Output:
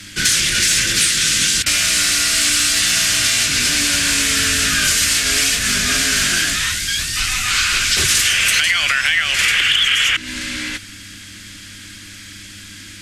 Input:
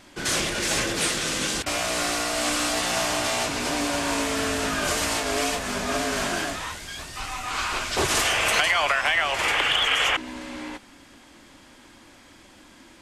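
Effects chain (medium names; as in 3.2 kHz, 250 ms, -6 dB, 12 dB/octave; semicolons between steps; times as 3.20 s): FFT filter 140 Hz 0 dB, 910 Hz -20 dB, 1.5 kHz +2 dB, 5 kHz +7 dB; compression 4:1, threshold -25 dBFS, peak gain reduction 10 dB; sine folder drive 9 dB, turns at -3 dBFS; mains buzz 100 Hz, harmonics 3, -44 dBFS; trim -1 dB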